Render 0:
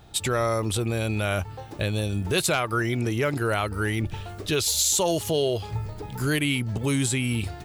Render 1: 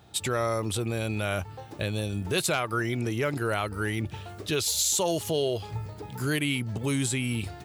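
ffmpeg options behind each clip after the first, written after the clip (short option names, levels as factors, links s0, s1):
-af "highpass=80,volume=0.708"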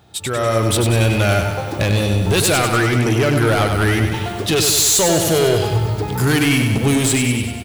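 -filter_complex "[0:a]dynaudnorm=f=110:g=9:m=5.31,asoftclip=type=tanh:threshold=0.141,asplit=2[s0][s1];[s1]aecho=0:1:97|194|291|388|485|582|679|776:0.501|0.296|0.174|0.103|0.0607|0.0358|0.0211|0.0125[s2];[s0][s2]amix=inputs=2:normalize=0,volume=1.58"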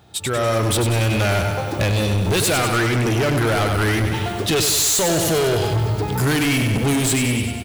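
-af "asoftclip=type=hard:threshold=0.158"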